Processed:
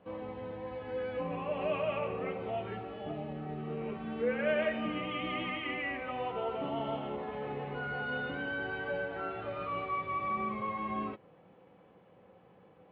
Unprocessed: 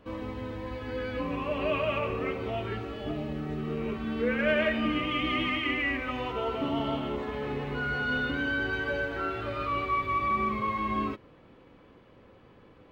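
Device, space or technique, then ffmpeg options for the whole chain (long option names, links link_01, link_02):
guitar cabinet: -af "highpass=97,equalizer=frequency=180:width_type=q:width=4:gain=9,equalizer=frequency=260:width_type=q:width=4:gain=-4,equalizer=frequency=510:width_type=q:width=4:gain=6,equalizer=frequency=770:width_type=q:width=4:gain=10,lowpass=frequency=3500:width=0.5412,lowpass=frequency=3500:width=1.3066,volume=-7.5dB"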